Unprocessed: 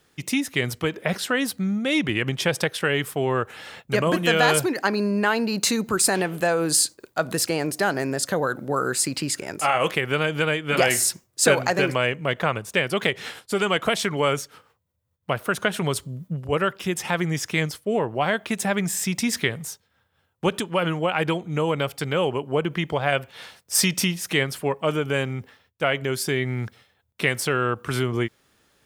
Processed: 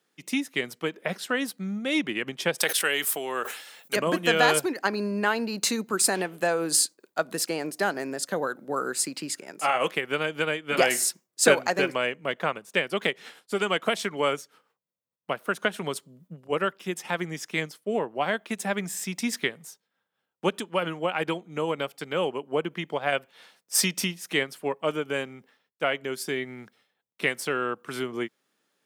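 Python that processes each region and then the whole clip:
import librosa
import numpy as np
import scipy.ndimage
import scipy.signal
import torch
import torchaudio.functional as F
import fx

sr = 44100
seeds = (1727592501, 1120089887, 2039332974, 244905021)

y = fx.chain(x, sr, fx.riaa(side='recording'),
    fx.sustainer(db_per_s=50.0), at=(2.58, 3.96))
y = scipy.signal.sosfilt(scipy.signal.butter(4, 180.0, 'highpass', fs=sr, output='sos'), y)
y = fx.upward_expand(y, sr, threshold_db=-36.0, expansion=1.5)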